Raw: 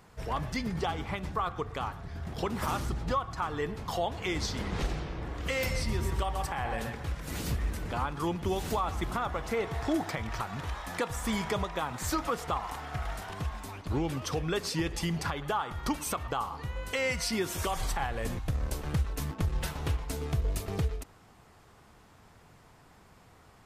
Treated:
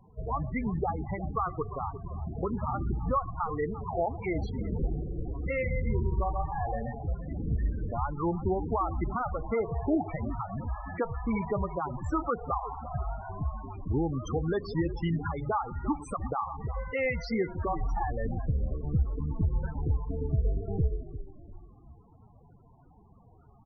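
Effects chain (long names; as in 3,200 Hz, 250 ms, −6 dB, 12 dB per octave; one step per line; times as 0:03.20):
high-shelf EQ 3,700 Hz −9 dB
echo with shifted repeats 348 ms, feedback 42%, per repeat −46 Hz, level −12 dB
tape wow and flutter 28 cents
spectral peaks only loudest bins 16
level +2.5 dB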